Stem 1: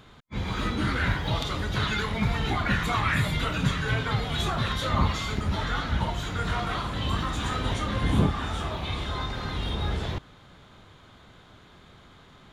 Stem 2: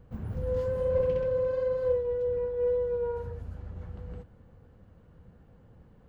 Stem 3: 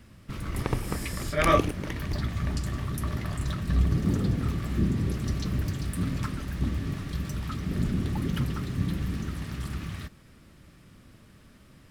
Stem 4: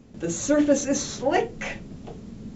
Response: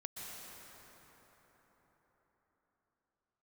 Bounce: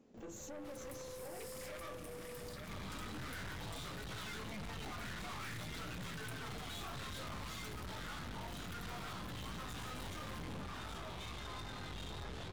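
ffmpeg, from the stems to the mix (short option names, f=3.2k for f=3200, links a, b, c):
-filter_complex "[0:a]flanger=delay=16.5:depth=6.6:speed=0.56,adelay=2350,volume=-3.5dB[a];[1:a]acompressor=threshold=-32dB:ratio=6,adelay=50,volume=-4dB[b];[2:a]highshelf=f=5.6k:g=10,alimiter=limit=-19.5dB:level=0:latency=1:release=201,adelay=350,volume=-7.5dB,asplit=3[c][d][e];[d]volume=-10.5dB[f];[e]volume=-11dB[g];[3:a]alimiter=limit=-20dB:level=0:latency=1,equalizer=f=460:t=o:w=2.5:g=6,volume=-13dB,asplit=2[h][i];[i]apad=whole_len=270723[j];[b][j]sidechaingate=range=-33dB:threshold=-49dB:ratio=16:detection=peak[k];[k][c][h]amix=inputs=3:normalize=0,equalizer=f=94:w=0.65:g=-10,acompressor=threshold=-45dB:ratio=2,volume=0dB[l];[4:a]atrim=start_sample=2205[m];[f][m]afir=irnorm=-1:irlink=0[n];[g]aecho=0:1:884:1[o];[a][l][n][o]amix=inputs=4:normalize=0,lowshelf=f=61:g=-7.5,aeval=exprs='(tanh(158*val(0)+0.45)-tanh(0.45))/158':c=same"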